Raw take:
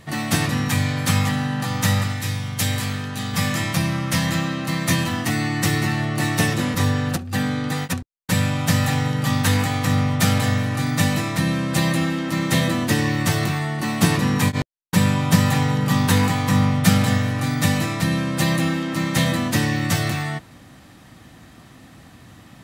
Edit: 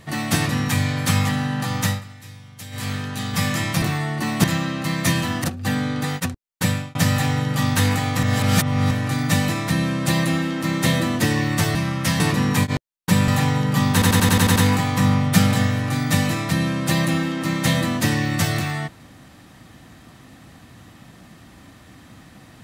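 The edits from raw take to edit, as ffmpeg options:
-filter_complex "[0:a]asplit=19[s0][s1][s2][s3][s4][s5][s6][s7][s8][s9][s10][s11][s12][s13][s14][s15][s16][s17][s18];[s0]atrim=end=2.01,asetpts=PTS-STARTPTS,afade=t=out:st=1.75:d=0.26:c=qsin:silence=0.16788[s19];[s1]atrim=start=2.01:end=2.71,asetpts=PTS-STARTPTS,volume=0.168[s20];[s2]atrim=start=2.71:end=3.822,asetpts=PTS-STARTPTS,afade=t=in:d=0.26:c=qsin:silence=0.16788[s21];[s3]atrim=start=13.428:end=14.052[s22];[s4]atrim=start=4.268:end=5.272[s23];[s5]atrim=start=7.118:end=8.63,asetpts=PTS-STARTPTS,afade=t=out:st=1.212:d=0.3[s24];[s6]atrim=start=8.63:end=9.912,asetpts=PTS-STARTPTS,afade=t=in:d=0.004:c=hsin[s25];[s7]atrim=start=9.908:end=10.592,asetpts=PTS-STARTPTS,areverse[s26];[s8]atrim=start=10.588:end=13.432[s27];[s9]atrim=start=3.818:end=4.272[s28];[s10]atrim=start=14.048:end=15.132[s29];[s11]atrim=start=15.418:end=16.162[s30];[s12]atrim=start=16.068:end=16.162[s31];[s13]atrim=start=16.068:end=16.162[s32];[s14]atrim=start=16.068:end=16.162[s33];[s15]atrim=start=16.068:end=16.162[s34];[s16]atrim=start=16.068:end=16.162[s35];[s17]atrim=start=16.068:end=16.162[s36];[s18]atrim=start=16.068[s37];[s19][s20][s21]concat=n=3:v=0:a=1[s38];[s38][s22]acrossfade=d=0.004:c1=hsin:c2=hsin[s39];[s39][s23]acrossfade=d=0.004:c1=hsin:c2=hsin[s40];[s24][s25]concat=n=2:v=0:a=1[s41];[s40][s41]acrossfade=d=0.004:c1=hsin:c2=hsin[s42];[s42][s26]acrossfade=d=0.004:c1=hsin:c2=hsin[s43];[s43][s27]acrossfade=d=0.004:c1=hsin:c2=hsin[s44];[s44][s28]acrossfade=d=0.004:c1=hsin:c2=hsin[s45];[s45][s29]acrossfade=d=0.004:c1=hsin:c2=hsin[s46];[s46][s30]acrossfade=d=0.004:c1=hsin:c2=hsin[s47];[s47][s31]acrossfade=d=0.004:c1=hsin:c2=hsin[s48];[s48][s32]acrossfade=d=0.004:c1=hsin:c2=hsin[s49];[s49][s33]acrossfade=d=0.004:c1=hsin:c2=hsin[s50];[s50][s34]acrossfade=d=0.004:c1=hsin:c2=hsin[s51];[s51][s35]acrossfade=d=0.004:c1=hsin:c2=hsin[s52];[s52][s36]acrossfade=d=0.004:c1=hsin:c2=hsin[s53];[s53][s37]acrossfade=d=0.004:c1=hsin:c2=hsin"

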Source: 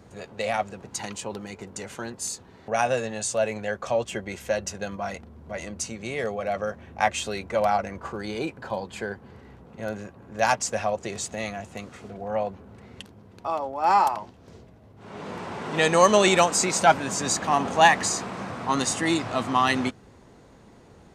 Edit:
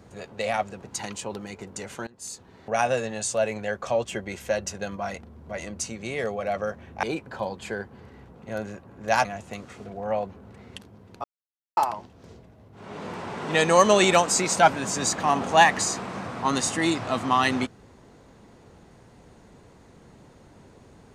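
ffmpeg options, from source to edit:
-filter_complex "[0:a]asplit=6[s0][s1][s2][s3][s4][s5];[s0]atrim=end=2.07,asetpts=PTS-STARTPTS,afade=t=out:st=2.066:d=0.004:c=hsin:silence=0.0707946[s6];[s1]atrim=start=2.07:end=7.032,asetpts=PTS-STARTPTS,afade=t=in:d=0.67:c=qsin:silence=0.0707946[s7];[s2]atrim=start=8.338:end=10.562[s8];[s3]atrim=start=11.488:end=13.48,asetpts=PTS-STARTPTS,afade=t=out:st=1.988:d=0.004:c=hsin[s9];[s4]atrim=start=13.48:end=14.01,asetpts=PTS-STARTPTS,volume=0[s10];[s5]atrim=start=14.01,asetpts=PTS-STARTPTS,afade=t=in:d=0.004:c=hsin[s11];[s6][s7]concat=n=2:v=0:a=1[s12];[s12][s8]acrossfade=d=0.004:c1=hsin:c2=hsin[s13];[s9][s10][s11]concat=n=3:v=0:a=1[s14];[s13][s14]acrossfade=d=0.004:c1=hsin:c2=hsin"

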